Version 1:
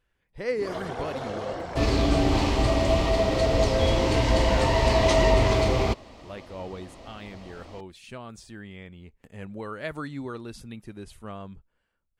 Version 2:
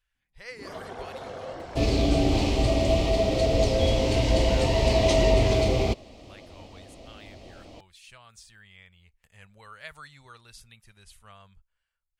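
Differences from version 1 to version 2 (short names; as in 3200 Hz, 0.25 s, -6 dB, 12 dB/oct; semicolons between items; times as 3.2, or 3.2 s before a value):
speech: add passive tone stack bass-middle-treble 10-0-10; first sound -5.0 dB; second sound: add band shelf 1300 Hz -9 dB 1.3 oct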